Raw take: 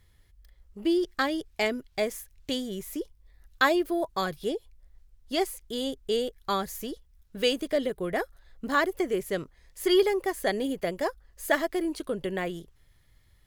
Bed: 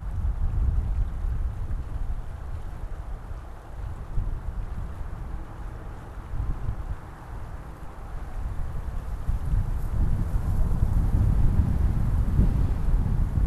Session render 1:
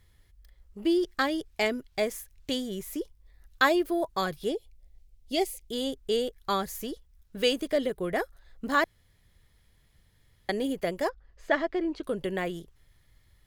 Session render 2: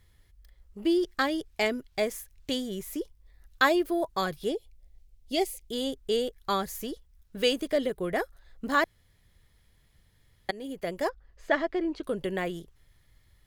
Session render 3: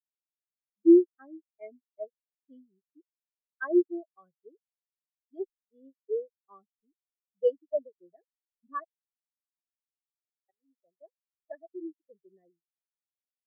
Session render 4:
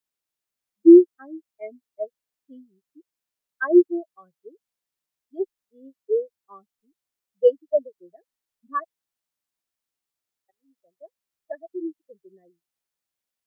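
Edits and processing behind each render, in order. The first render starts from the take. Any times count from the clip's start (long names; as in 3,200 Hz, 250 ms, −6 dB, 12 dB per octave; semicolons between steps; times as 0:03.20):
0:04.56–0:05.72: flat-topped bell 1,300 Hz −11.5 dB 1.1 octaves; 0:08.84–0:10.49: fill with room tone; 0:11.09–0:12.03: high-frequency loss of the air 180 metres
0:10.51–0:11.07: fade in, from −16 dB
every bin expanded away from the loudest bin 4 to 1
level +8.5 dB; brickwall limiter −3 dBFS, peak gain reduction 2 dB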